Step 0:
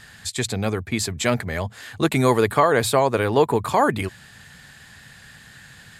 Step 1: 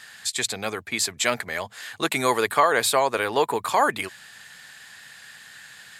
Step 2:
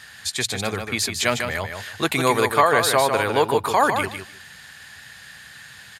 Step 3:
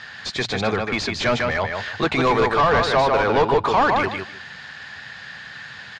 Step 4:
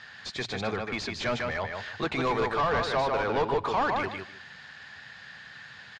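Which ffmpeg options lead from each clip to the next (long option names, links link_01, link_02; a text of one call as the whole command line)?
ffmpeg -i in.wav -af "highpass=frequency=1000:poles=1,volume=2.5dB" out.wav
ffmpeg -i in.wav -filter_complex "[0:a]equalizer=frequency=61:width_type=o:width=2.1:gain=14.5,bandreject=frequency=7700:width=8.8,asplit=2[link_01][link_02];[link_02]aecho=0:1:152|304|456:0.473|0.071|0.0106[link_03];[link_01][link_03]amix=inputs=2:normalize=0,volume=1.5dB" out.wav
ffmpeg -i in.wav -filter_complex "[0:a]asplit=2[link_01][link_02];[link_02]highpass=frequency=720:poles=1,volume=24dB,asoftclip=type=tanh:threshold=-1dB[link_03];[link_01][link_03]amix=inputs=2:normalize=0,lowpass=frequency=1000:poles=1,volume=-6dB,lowpass=frequency=5600:width=0.5412,lowpass=frequency=5600:width=1.3066,bass=frequency=250:gain=7,treble=frequency=4000:gain=6,volume=-5.5dB" out.wav
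ffmpeg -i in.wav -af "aecho=1:1:100:0.075,volume=-9dB" out.wav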